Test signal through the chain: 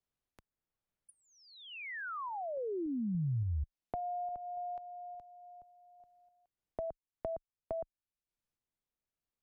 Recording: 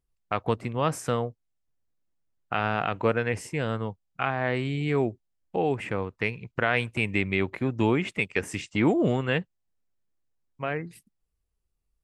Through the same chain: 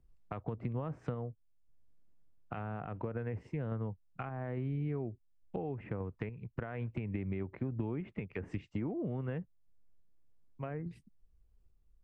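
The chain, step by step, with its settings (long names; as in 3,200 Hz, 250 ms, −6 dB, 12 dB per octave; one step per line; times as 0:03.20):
brickwall limiter −14.5 dBFS
treble cut that deepens with the level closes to 1,900 Hz, closed at −26 dBFS
sample-and-hold tremolo
downward compressor 5 to 1, threshold −32 dBFS
spectral tilt −3 dB per octave
multiband upward and downward compressor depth 40%
level −7 dB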